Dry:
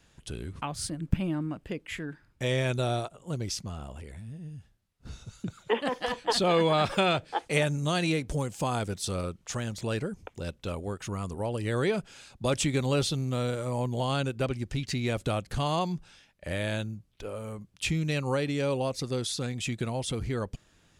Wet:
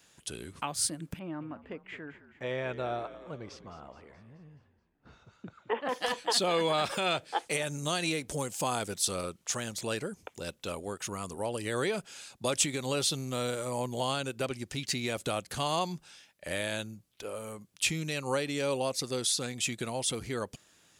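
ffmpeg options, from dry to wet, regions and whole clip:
-filter_complex "[0:a]asettb=1/sr,asplit=3[s0][s1][s2];[s0]atrim=end=1.194[s3];[s1]atrim=start=1.19:end=5.89,asetpts=PTS-STARTPTS,afade=t=in:d=0.004:c=qsin,afade=t=out:st=4.696:d=0.004:c=qsin,lowpass=1200,tiltshelf=f=900:g=-5.5,asplit=7[s4][s5][s6][s7][s8][s9][s10];[s5]adelay=213,afreqshift=-62,volume=0.2[s11];[s6]adelay=426,afreqshift=-124,volume=0.11[s12];[s7]adelay=639,afreqshift=-186,volume=0.0603[s13];[s8]adelay=852,afreqshift=-248,volume=0.0331[s14];[s9]adelay=1065,afreqshift=-310,volume=0.0182[s15];[s10]adelay=1278,afreqshift=-372,volume=0.01[s16];[s4][s11][s12][s13][s14][s15][s16]amix=inputs=7:normalize=0,atrim=end_sample=207270[s17];[s2]atrim=start=5.886[s18];[s3][s17]acrossfade=d=0.004:c1=hsin:c2=qsin[s19];[s19][s18]acrossfade=d=0.004:c1=qsin:c2=hsin,alimiter=limit=0.119:level=0:latency=1:release=142,highpass=f=310:p=1,highshelf=f=5700:g=9.5"

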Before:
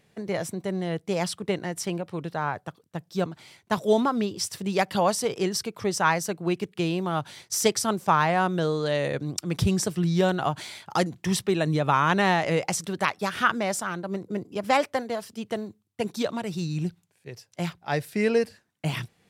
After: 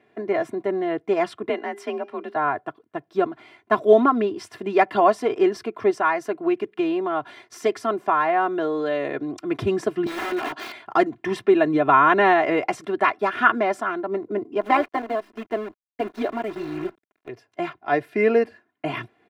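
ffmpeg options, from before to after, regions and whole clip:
-filter_complex "[0:a]asettb=1/sr,asplit=3[s0][s1][s2];[s0]atrim=end=1.494[s3];[s1]atrim=start=1.49:end=2.36,asetpts=PTS-STARTPTS,afade=t=in:d=0.004:c=qsin,afade=t=out:st=0.866:d=0.004:c=qsin,afreqshift=47,equalizer=f=180:w=0.57:g=-9,bandreject=f=402.8:t=h:w=4,bandreject=f=805.6:t=h:w=4,bandreject=f=1208.4:t=h:w=4,bandreject=f=1611.2:t=h:w=4,bandreject=f=2014:t=h:w=4,bandreject=f=2416.8:t=h:w=4,bandreject=f=2819.6:t=h:w=4,bandreject=f=3222.4:t=h:w=4,bandreject=f=3625.2:t=h:w=4,bandreject=f=4028:t=h:w=4,bandreject=f=4430.8:t=h:w=4,bandreject=f=4833.6:t=h:w=4,bandreject=f=5236.4:t=h:w=4,bandreject=f=5639.2:t=h:w=4,bandreject=f=6042:t=h:w=4,bandreject=f=6444.8:t=h:w=4,bandreject=f=6847.6:t=h:w=4[s4];[s2]atrim=start=2.356[s5];[s3][s4]acrossfade=d=0.004:c1=hsin:c2=qsin[s6];[s6][s5]acrossfade=d=0.004:c1=qsin:c2=hsin,asettb=1/sr,asplit=3[s7][s8][s9];[s7]atrim=end=5.904[s10];[s8]atrim=start=5.9:end=9.4,asetpts=PTS-STARTPTS,afade=t=in:d=0.004:c=qsin,afade=t=out:st=3.496:d=0.004:c=qsin,bass=f=250:g=-3,treble=f=4000:g=1,acompressor=threshold=0.0355:ratio=1.5:attack=3.2:release=140:knee=1:detection=peak[s11];[s9]atrim=start=9.396[s12];[s10][s11]acrossfade=d=0.004:c1=hsin:c2=qsin[s13];[s13][s12]acrossfade=d=0.004:c1=qsin:c2=hsin,asettb=1/sr,asplit=3[s14][s15][s16];[s14]atrim=end=10.064[s17];[s15]atrim=start=10.06:end=10.72,asetpts=PTS-STARTPTS,afade=t=in:d=0.004:c=qsin,afade=t=out:st=0.656:d=0.004:c=qsin,highpass=f=230:w=0.5412,highpass=f=230:w=1.3066,equalizer=f=5000:w=1.3:g=14.5,aeval=exprs='(mod(16.8*val(0)+1,2)-1)/16.8':c=same[s18];[s16]atrim=start=10.716[s19];[s17][s18]acrossfade=d=0.004:c1=hsin:c2=qsin[s20];[s20][s19]acrossfade=d=0.004:c1=qsin:c2=hsin,asettb=1/sr,asplit=3[s21][s22][s23];[s21]atrim=end=14.614[s24];[s22]atrim=start=14.61:end=17.29,asetpts=PTS-STARTPTS,afade=t=in:d=0.004:c=qsin,afade=t=out:st=2.676:d=0.004:c=qsin,tremolo=f=210:d=0.571,acrusher=bits=7:dc=4:mix=0:aa=0.000001[s25];[s23]atrim=start=17.286[s26];[s24][s25]acrossfade=d=0.004:c1=hsin:c2=qsin[s27];[s27][s26]acrossfade=d=0.004:c1=qsin:c2=hsin,acrossover=split=150 2500:gain=0.0891 1 0.0631[s28][s29][s30];[s28][s29][s30]amix=inputs=3:normalize=0,aecho=1:1:2.9:0.85,volume=1.68"

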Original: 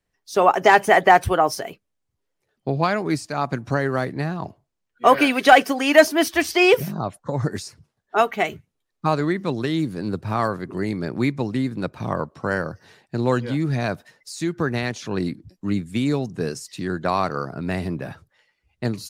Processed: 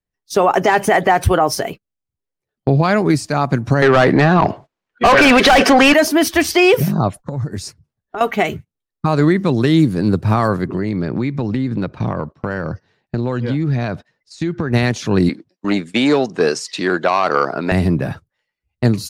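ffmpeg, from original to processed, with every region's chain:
-filter_complex "[0:a]asettb=1/sr,asplit=3[s0][s1][s2];[s0]atrim=end=3.824[s3];[s1]atrim=start=3.82:end=5.94,asetpts=PTS-STARTPTS,afade=t=in:d=0.004:c=qsin,afade=t=out:st=2.116:d=0.004:c=qsin,aemphasis=mode=reproduction:type=50fm,asplit=2[s4][s5];[s5]highpass=f=720:p=1,volume=22.4,asoftclip=type=tanh:threshold=0.841[s6];[s4][s6]amix=inputs=2:normalize=0,lowpass=f=4300:p=1,volume=0.501[s7];[s2]atrim=start=5.936[s8];[s3][s7]acrossfade=d=0.004:c1=hsin:c2=qsin[s9];[s9][s8]acrossfade=d=0.004:c1=qsin:c2=hsin,asettb=1/sr,asplit=3[s10][s11][s12];[s10]atrim=end=7.164[s13];[s11]atrim=start=7.16:end=8.21,asetpts=PTS-STARTPTS,afade=t=in:d=0.004:c=qsin,afade=t=out:st=1.046:d=0.004:c=qsin,lowshelf=f=150:g=8.5,acompressor=threshold=0.0282:ratio=8:attack=3.2:release=140:knee=1:detection=peak[s14];[s12]atrim=start=8.206[s15];[s13][s14]acrossfade=d=0.004:c1=hsin:c2=qsin[s16];[s16][s15]acrossfade=d=0.004:c1=qsin:c2=hsin,asettb=1/sr,asplit=3[s17][s18][s19];[s17]atrim=end=10.674[s20];[s18]atrim=start=10.67:end=14.73,asetpts=PTS-STARTPTS,afade=t=in:d=0.004:c=qsin,afade=t=out:st=4.056:d=0.004:c=qsin,lowpass=5000,acompressor=threshold=0.0501:ratio=6:attack=3.2:release=140:knee=1:detection=peak[s21];[s19]atrim=start=14.726[s22];[s20][s21]acrossfade=d=0.004:c1=hsin:c2=qsin[s23];[s23][s22]acrossfade=d=0.004:c1=qsin:c2=hsin,asettb=1/sr,asplit=3[s24][s25][s26];[s24]atrim=end=15.294[s27];[s25]atrim=start=15.29:end=17.72,asetpts=PTS-STARTPTS,afade=t=in:d=0.004:c=qsin,afade=t=out:st=2.426:d=0.004:c=qsin,aeval=exprs='0.398*sin(PI/2*1.41*val(0)/0.398)':c=same,highpass=460,lowpass=5500[s28];[s26]atrim=start=17.716[s29];[s27][s28]acrossfade=d=0.004:c1=hsin:c2=qsin[s30];[s30][s29]acrossfade=d=0.004:c1=qsin:c2=hsin,agate=range=0.112:threshold=0.0112:ratio=16:detection=peak,lowshelf=f=280:g=6,alimiter=limit=0.266:level=0:latency=1:release=63,volume=2.37"

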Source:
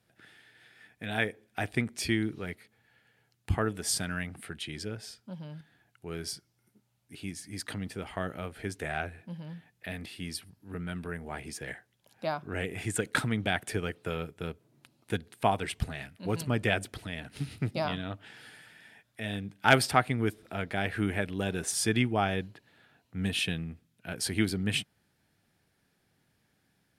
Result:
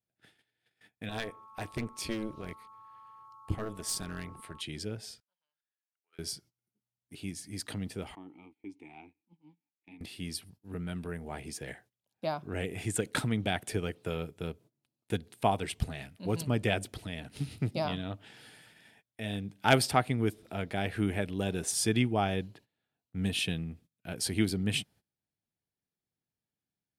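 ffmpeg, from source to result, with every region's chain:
-filter_complex "[0:a]asettb=1/sr,asplit=3[s0][s1][s2];[s0]atrim=end=1.094[s3];[s1]atrim=start=1.09:end=4.61,asetpts=PTS-STARTPTS,afade=t=in:d=0.004:c=qsin,afade=t=out:st=3.516:d=0.004:c=qsin,aeval=exprs='val(0)+0.00631*sin(2*PI*1100*n/s)':c=same,aeval=exprs='clip(val(0),-1,0.0531)':c=same,tremolo=f=220:d=0.788[s4];[s2]atrim=start=4.606[s5];[s3][s4]acrossfade=d=0.004:c1=hsin:c2=qsin[s6];[s6][s5]acrossfade=d=0.004:c1=qsin:c2=hsin,asettb=1/sr,asplit=3[s7][s8][s9];[s7]atrim=end=5.204[s10];[s8]atrim=start=5.2:end=6.19,asetpts=PTS-STARTPTS,afade=t=in:d=0.004:c=qsin,afade=t=out:st=0.986:d=0.004:c=qsin,aderivative,acontrast=31,bandpass=f=1300:t=q:w=1.3[s11];[s9]atrim=start=6.186[s12];[s10][s11]acrossfade=d=0.004:c1=hsin:c2=qsin[s13];[s13][s12]acrossfade=d=0.004:c1=qsin:c2=hsin,asettb=1/sr,asplit=3[s14][s15][s16];[s14]atrim=end=8.154[s17];[s15]atrim=start=8.15:end=10.01,asetpts=PTS-STARTPTS,afade=t=in:d=0.004:c=qsin,afade=t=out:st=1.856:d=0.004:c=qsin,asplit=3[s18][s19][s20];[s18]bandpass=f=300:t=q:w=8,volume=1[s21];[s19]bandpass=f=870:t=q:w=8,volume=0.501[s22];[s20]bandpass=f=2240:t=q:w=8,volume=0.355[s23];[s21][s22][s23]amix=inputs=3:normalize=0,highshelf=f=3700:g=6.5[s24];[s16]atrim=start=10.006[s25];[s17][s24]acrossfade=d=0.004:c1=hsin:c2=qsin[s26];[s26][s25]acrossfade=d=0.004:c1=qsin:c2=hsin,agate=range=0.0891:threshold=0.00178:ratio=16:detection=peak,equalizer=f=1600:t=o:w=1.1:g=-6"

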